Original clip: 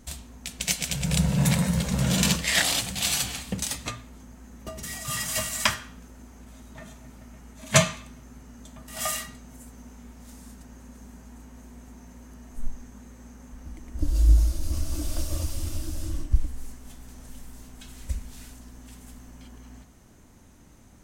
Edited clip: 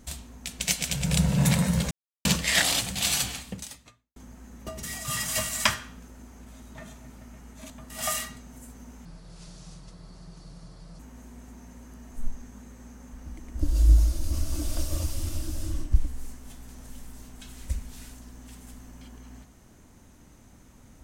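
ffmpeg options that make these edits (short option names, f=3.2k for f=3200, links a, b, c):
-filter_complex "[0:a]asplit=7[a][b][c][d][e][f][g];[a]atrim=end=1.91,asetpts=PTS-STARTPTS,afade=t=out:st=1.906:d=0.004:c=hsin[h];[b]atrim=start=1.91:end=2.25,asetpts=PTS-STARTPTS,volume=0[i];[c]atrim=start=2.25:end=4.16,asetpts=PTS-STARTPTS,afade=t=in:d=0.004:c=hsin,afade=t=out:st=1:d=0.91:c=qua[j];[d]atrim=start=4.16:end=7.702,asetpts=PTS-STARTPTS,afade=t=in:d=0.004:c=hsin[k];[e]atrim=start=8.678:end=10.034[l];[f]atrim=start=10.03:end=11.39,asetpts=PTS-STARTPTS,asetrate=30870,aresample=44100[m];[g]atrim=start=11.386[n];[h][i][j][k]concat=n=4:v=0:a=1[o];[o][l]acrossfade=d=0.004:c1=hsin:c2=hsin[p];[p][m]acrossfade=d=0.004:c1=hsin:c2=hsin[q];[q][n]acrossfade=d=0.004:c1=hsin:c2=hsin"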